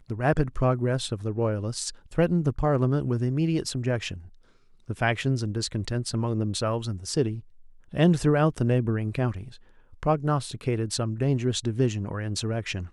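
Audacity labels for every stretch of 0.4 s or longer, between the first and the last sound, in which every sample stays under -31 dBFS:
4.170000	4.900000	silence
7.390000	7.940000	silence
9.430000	10.030000	silence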